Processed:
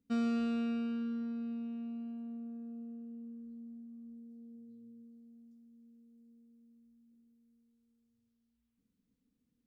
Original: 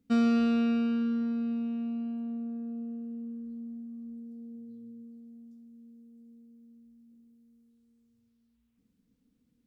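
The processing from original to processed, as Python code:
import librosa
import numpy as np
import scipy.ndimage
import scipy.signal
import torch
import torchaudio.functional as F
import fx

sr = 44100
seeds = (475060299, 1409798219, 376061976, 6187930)

y = fx.comb_fb(x, sr, f0_hz=400.0, decay_s=0.77, harmonics='all', damping=0.0, mix_pct=60)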